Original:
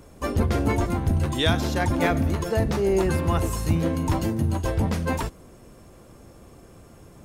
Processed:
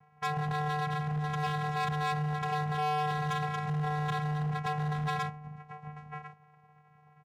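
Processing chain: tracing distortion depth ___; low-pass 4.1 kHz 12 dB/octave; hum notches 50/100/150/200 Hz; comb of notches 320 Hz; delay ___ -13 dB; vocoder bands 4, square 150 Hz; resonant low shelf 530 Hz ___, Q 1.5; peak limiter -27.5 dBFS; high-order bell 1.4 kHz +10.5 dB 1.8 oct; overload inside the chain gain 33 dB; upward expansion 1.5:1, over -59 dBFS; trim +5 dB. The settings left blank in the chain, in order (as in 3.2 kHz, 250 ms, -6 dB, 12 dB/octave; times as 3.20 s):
0.18 ms, 1047 ms, -6.5 dB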